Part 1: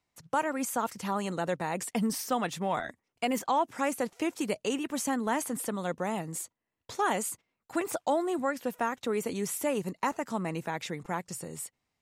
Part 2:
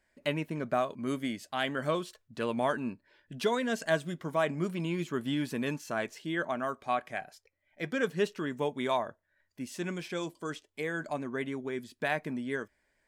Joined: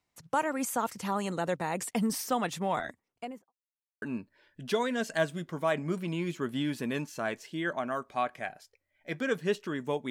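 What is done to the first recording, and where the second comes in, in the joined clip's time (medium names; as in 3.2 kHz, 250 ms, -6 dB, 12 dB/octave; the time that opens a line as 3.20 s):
part 1
2.87–3.53 s: studio fade out
3.53–4.02 s: mute
4.02 s: go over to part 2 from 2.74 s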